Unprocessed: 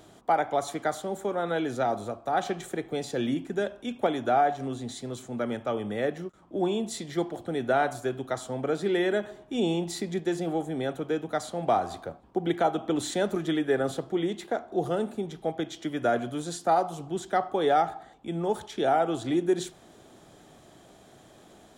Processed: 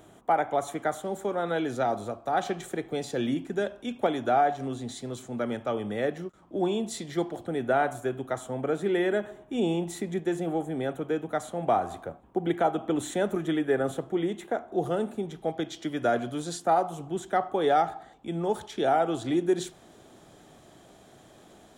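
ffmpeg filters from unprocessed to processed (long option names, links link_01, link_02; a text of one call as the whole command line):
ffmpeg -i in.wav -af "asetnsamples=nb_out_samples=441:pad=0,asendcmd='1.05 equalizer g -1.5;7.47 equalizer g -13.5;14.74 equalizer g -6;15.48 equalizer g 1.5;16.6 equalizer g -8.5;17.64 equalizer g -1',equalizer=frequency=4700:width_type=o:width=0.57:gain=-11.5" out.wav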